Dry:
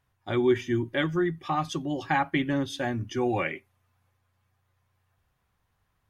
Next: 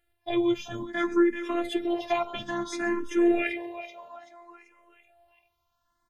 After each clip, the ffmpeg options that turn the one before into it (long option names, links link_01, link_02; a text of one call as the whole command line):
ffmpeg -i in.wav -filter_complex "[0:a]asplit=6[link_01][link_02][link_03][link_04][link_05][link_06];[link_02]adelay=384,afreqshift=80,volume=-12dB[link_07];[link_03]adelay=768,afreqshift=160,volume=-18.2dB[link_08];[link_04]adelay=1152,afreqshift=240,volume=-24.4dB[link_09];[link_05]adelay=1536,afreqshift=320,volume=-30.6dB[link_10];[link_06]adelay=1920,afreqshift=400,volume=-36.8dB[link_11];[link_01][link_07][link_08][link_09][link_10][link_11]amix=inputs=6:normalize=0,afftfilt=real='hypot(re,im)*cos(PI*b)':imag='0':win_size=512:overlap=0.75,asplit=2[link_12][link_13];[link_13]afreqshift=0.59[link_14];[link_12][link_14]amix=inputs=2:normalize=1,volume=7dB" out.wav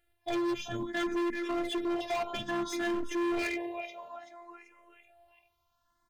ffmpeg -i in.wav -af "volume=28.5dB,asoftclip=hard,volume=-28.5dB" out.wav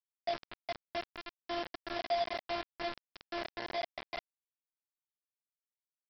ffmpeg -i in.wav -af "acompressor=threshold=-35dB:ratio=2,bandpass=frequency=650:width_type=q:width=4.3:csg=0,aresample=11025,acrusher=bits=6:mix=0:aa=0.000001,aresample=44100,volume=5dB" out.wav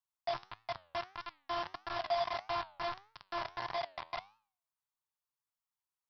ffmpeg -i in.wav -af "equalizer=frequency=125:width_type=o:width=1:gain=8,equalizer=frequency=250:width_type=o:width=1:gain=-9,equalizer=frequency=500:width_type=o:width=1:gain=-8,equalizer=frequency=1000:width_type=o:width=1:gain=12,equalizer=frequency=2000:width_type=o:width=1:gain=-3,flanger=delay=8.7:depth=3.8:regen=87:speed=1.6:shape=triangular,volume=3.5dB" out.wav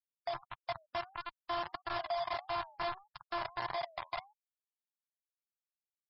ffmpeg -i in.wav -af "alimiter=level_in=8dB:limit=-24dB:level=0:latency=1:release=205,volume=-8dB,afftfilt=real='re*gte(hypot(re,im),0.00355)':imag='im*gte(hypot(re,im),0.00355)':win_size=1024:overlap=0.75,volume=4.5dB" out.wav